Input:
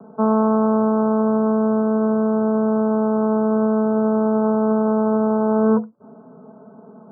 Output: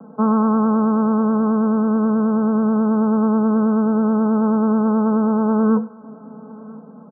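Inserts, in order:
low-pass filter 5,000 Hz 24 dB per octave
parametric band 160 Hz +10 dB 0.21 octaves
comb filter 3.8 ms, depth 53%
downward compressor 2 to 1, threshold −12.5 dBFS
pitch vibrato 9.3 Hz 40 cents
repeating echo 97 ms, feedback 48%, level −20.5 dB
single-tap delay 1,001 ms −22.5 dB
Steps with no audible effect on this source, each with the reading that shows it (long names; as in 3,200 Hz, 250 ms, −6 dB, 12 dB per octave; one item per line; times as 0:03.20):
low-pass filter 5,000 Hz: nothing at its input above 1,400 Hz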